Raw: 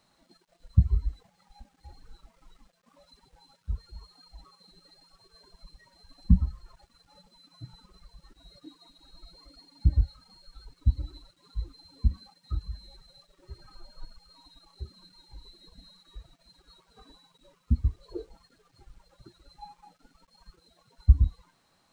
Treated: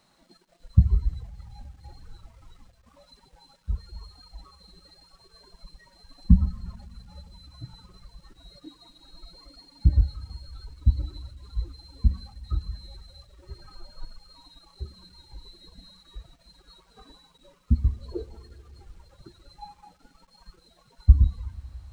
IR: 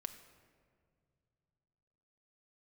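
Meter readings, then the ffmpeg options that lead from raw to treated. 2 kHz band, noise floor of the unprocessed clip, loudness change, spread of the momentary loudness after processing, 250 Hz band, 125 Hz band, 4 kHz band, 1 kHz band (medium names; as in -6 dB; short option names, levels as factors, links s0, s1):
no reading, -69 dBFS, +3.0 dB, 23 LU, +4.0 dB, +3.5 dB, +3.5 dB, +3.0 dB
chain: -filter_complex "[0:a]asplit=2[s0][s1];[1:a]atrim=start_sample=2205,asetrate=40131,aresample=44100[s2];[s1][s2]afir=irnorm=-1:irlink=0,volume=0.708[s3];[s0][s3]amix=inputs=2:normalize=0"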